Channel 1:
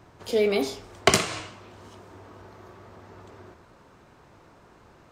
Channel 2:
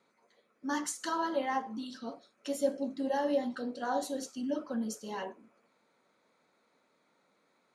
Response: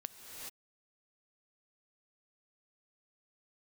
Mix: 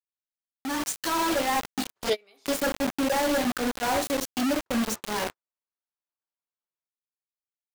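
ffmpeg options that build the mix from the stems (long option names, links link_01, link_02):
-filter_complex "[0:a]agate=range=-33dB:threshold=-42dB:ratio=3:detection=peak,highpass=frequency=1400:poles=1,adelay=1750,volume=-1.5dB,asplit=3[link_01][link_02][link_03];[link_01]atrim=end=2.72,asetpts=PTS-STARTPTS,afade=type=out:start_time=2.716:duration=0.004:curve=hsin[link_04];[link_02]atrim=start=2.72:end=4.66,asetpts=PTS-STARTPTS,volume=0[link_05];[link_03]atrim=start=4.66,asetpts=PTS-STARTPTS,afade=type=in:duration=0.004:curve=hsin[link_06];[link_04][link_05][link_06]concat=n=3:v=0:a=1[link_07];[1:a]bandreject=frequency=223.3:width_type=h:width=4,bandreject=frequency=446.6:width_type=h:width=4,bandreject=frequency=669.9:width_type=h:width=4,bandreject=frequency=893.2:width_type=h:width=4,bandreject=frequency=1116.5:width_type=h:width=4,bandreject=frequency=1339.8:width_type=h:width=4,bandreject=frequency=1563.1:width_type=h:width=4,bandreject=frequency=1786.4:width_type=h:width=4,bandreject=frequency=2009.7:width_type=h:width=4,bandreject=frequency=2233:width_type=h:width=4,bandreject=frequency=2456.3:width_type=h:width=4,bandreject=frequency=2679.6:width_type=h:width=4,bandreject=frequency=2902.9:width_type=h:width=4,bandreject=frequency=3126.2:width_type=h:width=4,bandreject=frequency=3349.5:width_type=h:width=4,bandreject=frequency=3572.8:width_type=h:width=4,bandreject=frequency=3796.1:width_type=h:width=4,bandreject=frequency=4019.4:width_type=h:width=4,bandreject=frequency=4242.7:width_type=h:width=4,bandreject=frequency=4466:width_type=h:width=4,bandreject=frequency=4689.3:width_type=h:width=4,bandreject=frequency=4912.6:width_type=h:width=4,bandreject=frequency=5135.9:width_type=h:width=4,bandreject=frequency=5359.2:width_type=h:width=4,bandreject=frequency=5582.5:width_type=h:width=4,bandreject=frequency=5805.8:width_type=h:width=4,bandreject=frequency=6029.1:width_type=h:width=4,bandreject=frequency=6252.4:width_type=h:width=4,bandreject=frequency=6475.7:width_type=h:width=4,bandreject=frequency=6699:width_type=h:width=4,aeval=exprs='0.0473*(abs(mod(val(0)/0.0473+3,4)-2)-1)':channel_layout=same,acrusher=bits=5:mix=0:aa=0.000001,volume=-2dB,asplit=2[link_08][link_09];[link_09]apad=whole_len=302870[link_10];[link_07][link_10]sidechaingate=range=-35dB:threshold=-42dB:ratio=16:detection=peak[link_11];[link_11][link_08]amix=inputs=2:normalize=0,dynaudnorm=framelen=120:gausssize=13:maxgain=10dB"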